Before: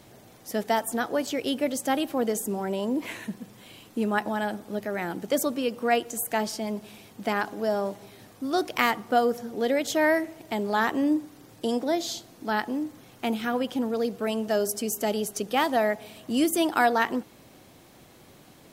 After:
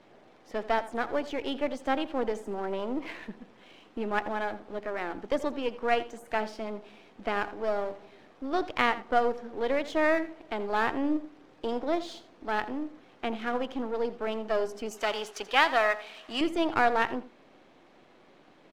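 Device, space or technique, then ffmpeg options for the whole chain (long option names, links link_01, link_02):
crystal radio: -filter_complex "[0:a]highpass=260,lowpass=2800,aeval=exprs='if(lt(val(0),0),0.447*val(0),val(0))':channel_layout=same,asettb=1/sr,asplit=3[link_01][link_02][link_03];[link_01]atrim=end=14.914[link_04];[link_02]atrim=start=14.91:end=16.41,asetpts=PTS-STARTPTS,afade=type=in:duration=0.004:curve=qsin,afade=type=out:start_time=1.496:duration=0.004:curve=qsin,tiltshelf=frequency=640:gain=-9.5[link_05];[link_03]atrim=start=16.406[link_06];[link_04][link_05]acrossfade=duration=0.004:curve1=hsin:curve2=qsin[link_07];[link_07][link_06]acrossfade=duration=0.004:curve1=qsin:curve2=hsin,aecho=1:1:83:0.158"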